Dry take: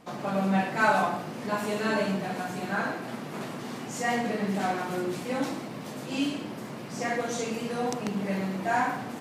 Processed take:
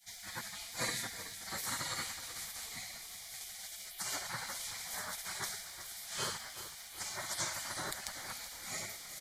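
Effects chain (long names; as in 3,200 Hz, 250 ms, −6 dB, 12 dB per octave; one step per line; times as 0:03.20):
phaser with its sweep stopped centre 720 Hz, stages 6
comb filter 6.7 ms, depth 37%
gate on every frequency bin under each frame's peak −25 dB weak
echo with shifted repeats 375 ms, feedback 57%, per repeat −31 Hz, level −12 dB
level +8 dB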